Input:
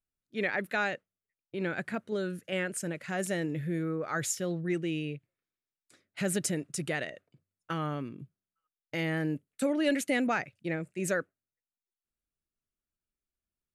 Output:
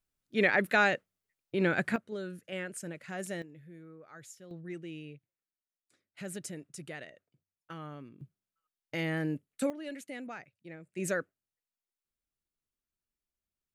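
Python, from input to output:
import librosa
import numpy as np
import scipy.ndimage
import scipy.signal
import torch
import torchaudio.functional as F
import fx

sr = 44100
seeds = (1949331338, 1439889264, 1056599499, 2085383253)

y = fx.gain(x, sr, db=fx.steps((0.0, 5.0), (1.96, -6.0), (3.42, -18.5), (4.51, -10.5), (8.21, -1.5), (9.7, -14.0), (10.93, -2.0)))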